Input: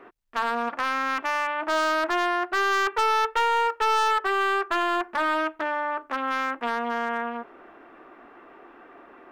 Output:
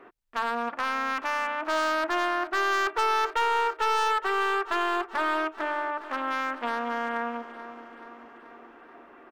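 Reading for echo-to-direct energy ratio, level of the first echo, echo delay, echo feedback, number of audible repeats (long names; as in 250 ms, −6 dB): −12.5 dB, −14.5 dB, 431 ms, 59%, 5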